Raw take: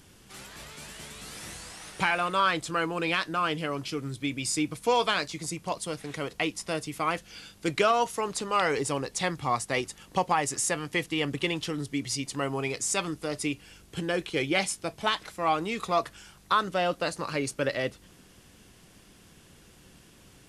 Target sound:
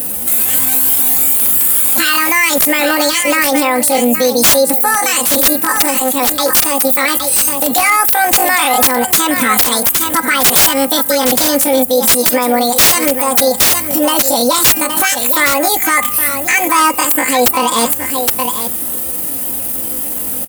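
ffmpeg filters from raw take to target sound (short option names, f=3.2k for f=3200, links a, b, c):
-filter_complex "[0:a]asetrate=78577,aresample=44100,atempo=0.561231,highpass=f=60:w=0.5412,highpass=f=60:w=1.3066,highshelf=f=6.1k:g=-7,aecho=1:1:3.9:0.73,asplit=2[a][b];[b]acompressor=threshold=-37dB:ratio=16,volume=1dB[c];[a][c]amix=inputs=2:normalize=0,aexciter=amount=8.2:drive=8.9:freq=8.1k,aeval=exprs='(mod(2.66*val(0)+1,2)-1)/2.66':c=same,bandreject=f=403.5:t=h:w=4,bandreject=f=807:t=h:w=4,bandreject=f=1.2105k:t=h:w=4,bandreject=f=1.614k:t=h:w=4,bandreject=f=2.0175k:t=h:w=4,bandreject=f=2.421k:t=h:w=4,bandreject=f=2.8245k:t=h:w=4,asplit=2[d][e];[e]aecho=0:1:817:0.251[f];[d][f]amix=inputs=2:normalize=0,alimiter=level_in=18dB:limit=-1dB:release=50:level=0:latency=1,volume=-1dB"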